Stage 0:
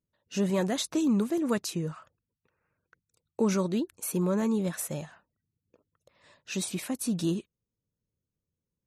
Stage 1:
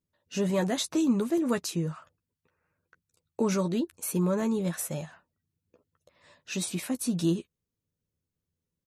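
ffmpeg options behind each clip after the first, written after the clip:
-filter_complex "[0:a]asplit=2[s0][s1];[s1]adelay=12,volume=0.398[s2];[s0][s2]amix=inputs=2:normalize=0"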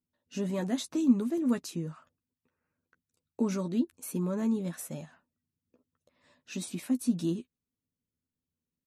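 -af "equalizer=f=250:t=o:w=0.47:g=11.5,volume=0.422"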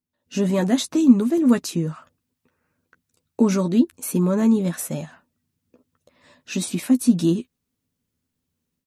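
-af "dynaudnorm=f=160:g=3:m=3.76"

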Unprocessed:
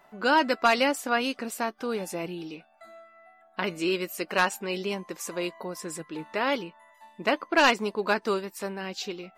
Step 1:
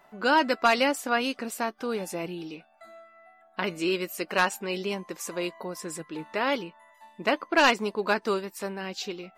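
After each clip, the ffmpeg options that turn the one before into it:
-af anull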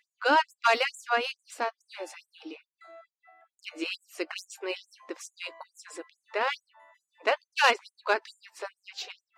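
-af "adynamicsmooth=sensitivity=2:basefreq=5500,afftfilt=real='re*gte(b*sr/1024,250*pow(6700/250,0.5+0.5*sin(2*PI*2.3*pts/sr)))':imag='im*gte(b*sr/1024,250*pow(6700/250,0.5+0.5*sin(2*PI*2.3*pts/sr)))':win_size=1024:overlap=0.75"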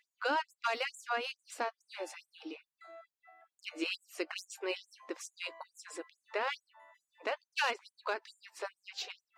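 -af "alimiter=limit=0.1:level=0:latency=1:release=334,volume=0.75"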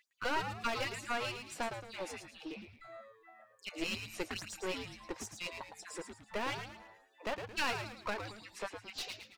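-filter_complex "[0:a]aeval=exprs='clip(val(0),-1,0.00891)':c=same,asplit=2[s0][s1];[s1]asplit=5[s2][s3][s4][s5][s6];[s2]adelay=110,afreqshift=-110,volume=0.447[s7];[s3]adelay=220,afreqshift=-220,volume=0.174[s8];[s4]adelay=330,afreqshift=-330,volume=0.0676[s9];[s5]adelay=440,afreqshift=-440,volume=0.0266[s10];[s6]adelay=550,afreqshift=-550,volume=0.0104[s11];[s7][s8][s9][s10][s11]amix=inputs=5:normalize=0[s12];[s0][s12]amix=inputs=2:normalize=0,volume=1.12"

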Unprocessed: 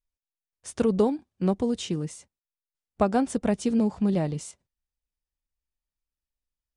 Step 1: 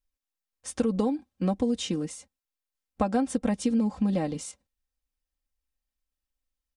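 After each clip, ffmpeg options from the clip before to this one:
-af "aecho=1:1:3.8:0.69,acompressor=threshold=0.0794:ratio=4"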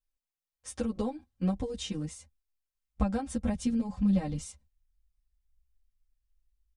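-filter_complex "[0:a]asubboost=boost=11:cutoff=110,asplit=2[s0][s1];[s1]adelay=9.3,afreqshift=0.82[s2];[s0][s2]amix=inputs=2:normalize=1,volume=0.794"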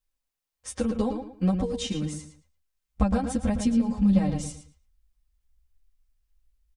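-filter_complex "[0:a]asplit=2[s0][s1];[s1]adelay=112,lowpass=f=4100:p=1,volume=0.447,asplit=2[s2][s3];[s3]adelay=112,lowpass=f=4100:p=1,volume=0.28,asplit=2[s4][s5];[s5]adelay=112,lowpass=f=4100:p=1,volume=0.28[s6];[s0][s2][s4][s6]amix=inputs=4:normalize=0,volume=1.78"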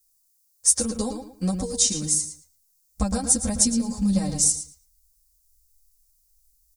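-af "aexciter=amount=12.9:drive=3.8:freq=4500,volume=0.841"

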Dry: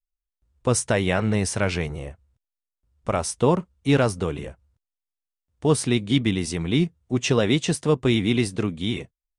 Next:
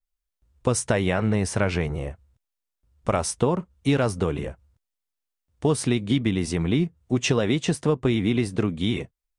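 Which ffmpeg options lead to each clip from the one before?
-af "acompressor=threshold=0.0891:ratio=6,adynamicequalizer=threshold=0.00501:dfrequency=2400:dqfactor=0.7:tfrequency=2400:tqfactor=0.7:attack=5:release=100:ratio=0.375:range=3.5:mode=cutabove:tftype=highshelf,volume=1.5"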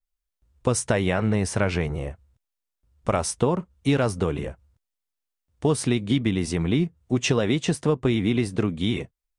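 -af anull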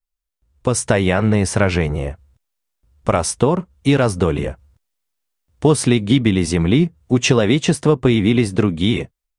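-af "dynaudnorm=f=450:g=3:m=3.76"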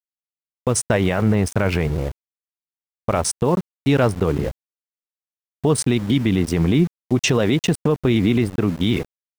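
-af "anlmdn=1580,aeval=exprs='val(0)*gte(abs(val(0)),0.0282)':c=same,alimiter=level_in=2.24:limit=0.891:release=50:level=0:latency=1,volume=0.447"

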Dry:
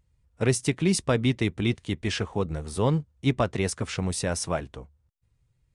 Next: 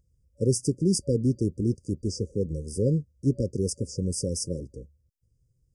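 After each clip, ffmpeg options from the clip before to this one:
-af "afftfilt=real='re*(1-between(b*sr/4096,570,4700))':imag='im*(1-between(b*sr/4096,570,4700))':win_size=4096:overlap=0.75"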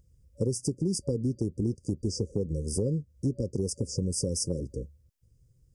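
-af "acompressor=threshold=0.0251:ratio=6,volume=2"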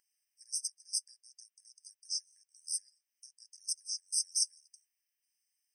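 -af "afftfilt=real='re*eq(mod(floor(b*sr/1024/1600),2),1)':imag='im*eq(mod(floor(b*sr/1024/1600),2),1)':win_size=1024:overlap=0.75,volume=1.41"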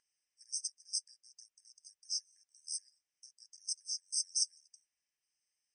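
-af "aeval=exprs='0.15*(cos(1*acos(clip(val(0)/0.15,-1,1)))-cos(1*PI/2))+0.00168*(cos(5*acos(clip(val(0)/0.15,-1,1)))-cos(5*PI/2))+0.00106*(cos(7*acos(clip(val(0)/0.15,-1,1)))-cos(7*PI/2))':c=same,lowpass=f=7500:t=q:w=2.8,aemphasis=mode=reproduction:type=50fm"

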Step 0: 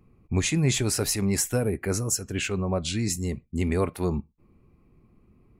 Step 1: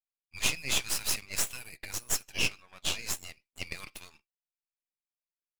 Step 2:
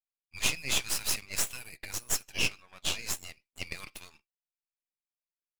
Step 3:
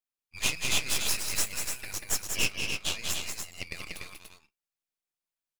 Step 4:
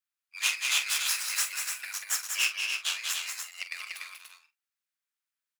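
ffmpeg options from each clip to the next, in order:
-af "highpass=f=2700:t=q:w=2.9,agate=range=0.0224:threshold=0.00141:ratio=3:detection=peak,aeval=exprs='max(val(0),0)':c=same"
-af anull
-af "aecho=1:1:189.5|291.5:0.562|0.562"
-filter_complex "[0:a]highpass=f=1400:t=q:w=1.7,asplit=2[s0][s1];[s1]adelay=45,volume=0.282[s2];[s0][s2]amix=inputs=2:normalize=0"

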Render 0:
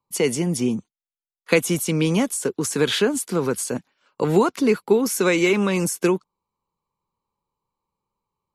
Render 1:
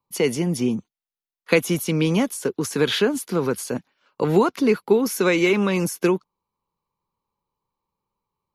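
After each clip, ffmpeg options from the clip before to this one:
-af "equalizer=f=8100:w=2.6:g=-10.5"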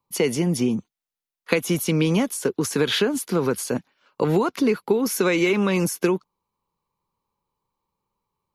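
-af "acompressor=threshold=0.126:ratio=6,volume=1.26"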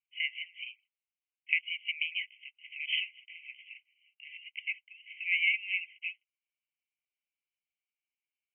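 -af "asuperpass=centerf=2500:order=20:qfactor=2.3"

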